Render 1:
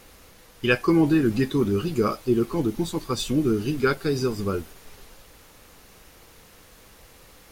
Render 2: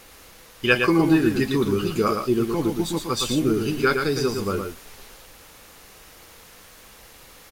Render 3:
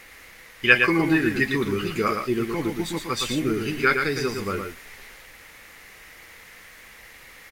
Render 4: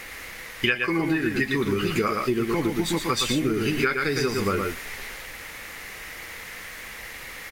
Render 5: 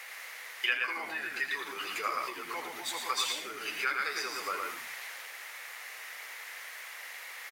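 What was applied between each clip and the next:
low shelf 470 Hz -6 dB; echo 0.114 s -5.5 dB; gain +4 dB
bell 2000 Hz +14.5 dB 0.65 oct; gain -3.5 dB
compressor 12:1, threshold -28 dBFS, peak gain reduction 19 dB; gain +8 dB
HPF 610 Hz 24 dB/oct; on a send: frequency-shifting echo 81 ms, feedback 34%, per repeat -100 Hz, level -9 dB; on the sum: gain -6 dB

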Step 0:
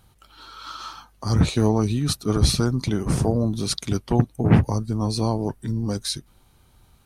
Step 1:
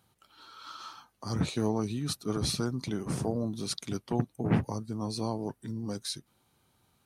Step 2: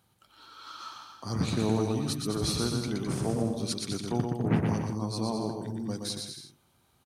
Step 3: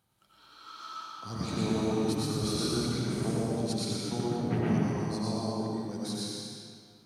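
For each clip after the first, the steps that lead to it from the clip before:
HPF 130 Hz 12 dB/oct; gain -8.5 dB
bouncing-ball echo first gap 0.12 s, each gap 0.75×, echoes 5
digital reverb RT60 2 s, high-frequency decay 0.85×, pre-delay 60 ms, DRR -5 dB; gain -6.5 dB

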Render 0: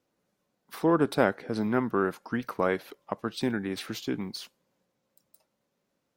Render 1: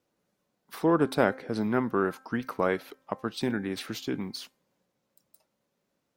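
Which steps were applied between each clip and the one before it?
de-hum 262.3 Hz, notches 9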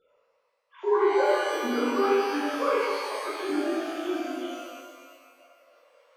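sine-wave speech; reverse; upward compressor, threshold -44 dBFS; reverse; shimmer reverb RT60 1.7 s, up +12 st, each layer -8 dB, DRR -9 dB; gain -7.5 dB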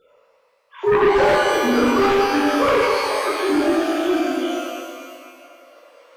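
sine folder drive 7 dB, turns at -12 dBFS; short-mantissa float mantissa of 6-bit; echo with dull and thin repeats by turns 0.126 s, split 990 Hz, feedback 68%, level -10.5 dB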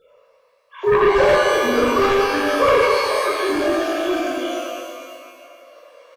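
comb 1.8 ms, depth 46%

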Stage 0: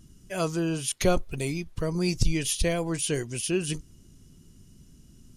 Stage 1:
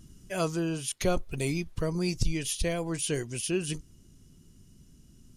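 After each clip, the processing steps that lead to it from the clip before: vocal rider within 4 dB 0.5 s; gain -2.5 dB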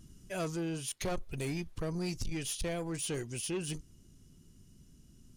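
soft clip -27 dBFS, distortion -10 dB; gain -3 dB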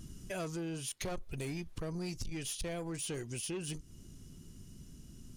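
compressor 3:1, threshold -47 dBFS, peak gain reduction 11 dB; gain +6.5 dB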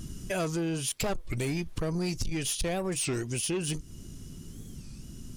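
record warp 33 1/3 rpm, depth 250 cents; gain +8.5 dB

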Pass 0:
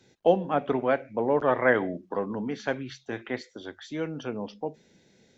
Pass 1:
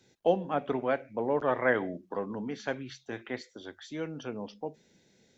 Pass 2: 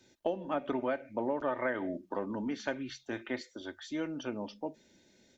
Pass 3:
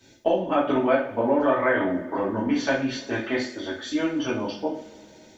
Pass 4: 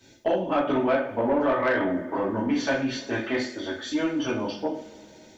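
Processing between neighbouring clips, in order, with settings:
high shelf 5600 Hz +5.5 dB; gain -4.5 dB
comb 3.3 ms, depth 50%; compressor 12:1, threshold -28 dBFS, peak gain reduction 10.5 dB
two-slope reverb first 0.42 s, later 2.7 s, from -22 dB, DRR -7.5 dB; gain +4 dB
soft clip -15 dBFS, distortion -17 dB

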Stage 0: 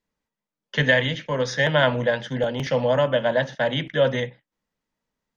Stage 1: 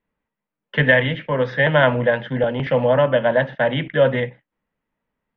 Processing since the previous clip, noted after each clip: LPF 2800 Hz 24 dB/oct; gain +4 dB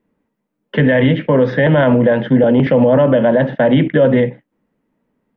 bell 280 Hz +14.5 dB 2.3 oct; limiter -7 dBFS, peak gain reduction 11.5 dB; gain +3 dB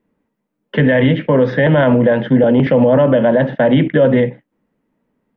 nothing audible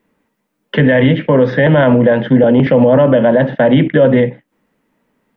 mismatched tape noise reduction encoder only; gain +2 dB

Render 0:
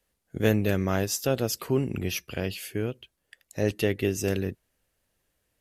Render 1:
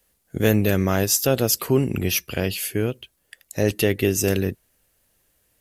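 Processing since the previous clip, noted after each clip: high shelf 8100 Hz +9.5 dB; in parallel at +0.5 dB: limiter -15 dBFS, peak gain reduction 7 dB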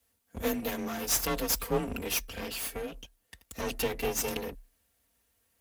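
minimum comb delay 4.5 ms; frequency shift +31 Hz; gain -5.5 dB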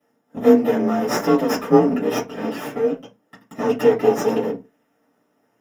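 in parallel at -4 dB: decimation with a swept rate 11×, swing 60% 1 Hz; on the sum: reverb RT60 0.25 s, pre-delay 3 ms, DRR -6.5 dB; gain -12 dB

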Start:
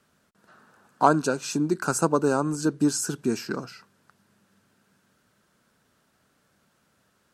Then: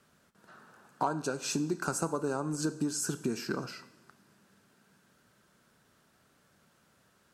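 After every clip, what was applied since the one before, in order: compressor 5:1, threshold -29 dBFS, peak gain reduction 15 dB; two-slope reverb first 0.78 s, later 2.9 s, DRR 12 dB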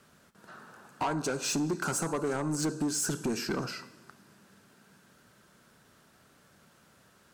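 soft clip -30.5 dBFS, distortion -10 dB; gain +5.5 dB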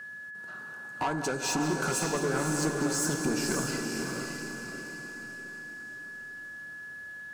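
regenerating reverse delay 0.105 s, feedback 71%, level -11.5 dB; diffused feedback echo 0.552 s, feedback 45%, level -3.5 dB; whine 1700 Hz -40 dBFS

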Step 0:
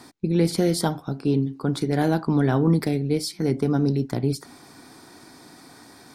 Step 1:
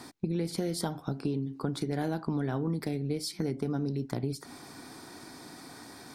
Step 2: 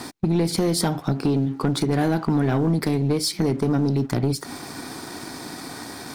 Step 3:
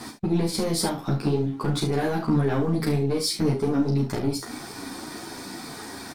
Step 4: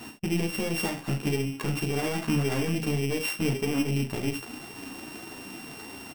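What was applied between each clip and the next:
compressor 5:1, threshold -29 dBFS, peak gain reduction 13 dB
sample leveller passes 2; gain +5 dB
early reflections 36 ms -6 dB, 68 ms -10.5 dB; ensemble effect
sample sorter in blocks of 16 samples; gain -4 dB

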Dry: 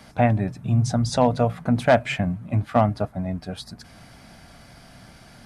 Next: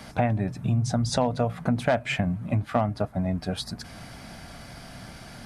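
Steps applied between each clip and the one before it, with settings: compressor 3:1, threshold -28 dBFS, peak gain reduction 12 dB; gain +4.5 dB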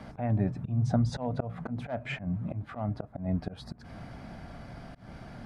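LPF 1000 Hz 6 dB/oct; auto swell 0.181 s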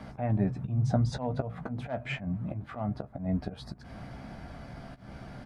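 doubler 15 ms -9 dB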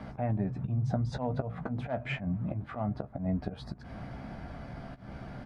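high shelf 4800 Hz -10 dB; compressor, threshold -28 dBFS, peak gain reduction 7 dB; gain +1.5 dB

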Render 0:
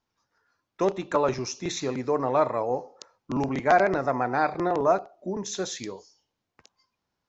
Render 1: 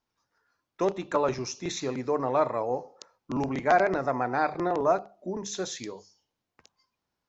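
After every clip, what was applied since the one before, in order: notches 50/100/150/200 Hz; gain -2 dB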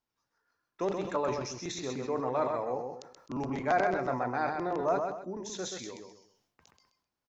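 feedback echo 0.129 s, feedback 21%, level -5.5 dB; sustainer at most 75 dB/s; gain -6 dB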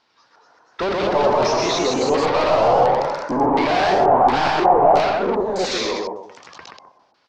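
overdrive pedal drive 35 dB, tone 1900 Hz, clips at -14.5 dBFS; LFO low-pass square 1.4 Hz 780–4600 Hz; echoes that change speed 0.251 s, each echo +1 st, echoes 3

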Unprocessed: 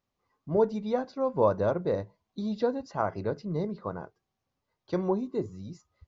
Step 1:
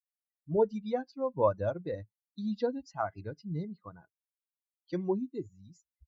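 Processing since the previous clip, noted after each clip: per-bin expansion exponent 2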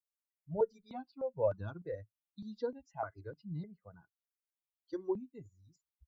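step phaser 3.3 Hz 650–2100 Hz; gain -3.5 dB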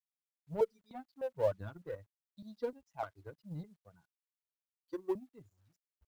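G.711 law mismatch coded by A; gain +1 dB

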